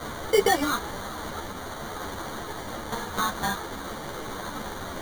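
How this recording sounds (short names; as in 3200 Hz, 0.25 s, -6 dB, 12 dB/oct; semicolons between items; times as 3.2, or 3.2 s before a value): a quantiser's noise floor 6-bit, dither triangular; phasing stages 6, 0.81 Hz, lowest notch 420–2700 Hz; aliases and images of a low sample rate 2600 Hz, jitter 0%; a shimmering, thickened sound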